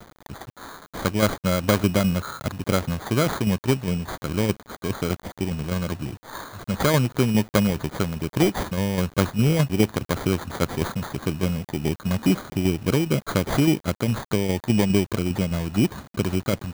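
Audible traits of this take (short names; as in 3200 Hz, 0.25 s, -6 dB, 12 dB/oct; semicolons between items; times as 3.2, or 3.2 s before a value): aliases and images of a low sample rate 2700 Hz, jitter 0%; tremolo saw down 4.9 Hz, depth 50%; a quantiser's noise floor 8-bit, dither none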